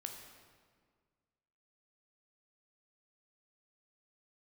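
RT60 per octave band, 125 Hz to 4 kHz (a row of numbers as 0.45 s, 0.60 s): 2.1 s, 2.0 s, 1.8 s, 1.7 s, 1.5 s, 1.2 s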